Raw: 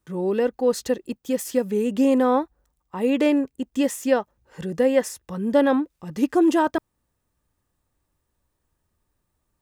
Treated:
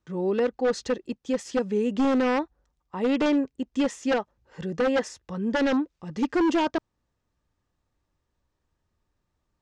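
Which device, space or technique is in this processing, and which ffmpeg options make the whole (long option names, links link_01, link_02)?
synthesiser wavefolder: -af "aeval=exprs='0.178*(abs(mod(val(0)/0.178+3,4)-2)-1)':channel_layout=same,lowpass=frequency=6600:width=0.5412,lowpass=frequency=6600:width=1.3066,volume=-2dB"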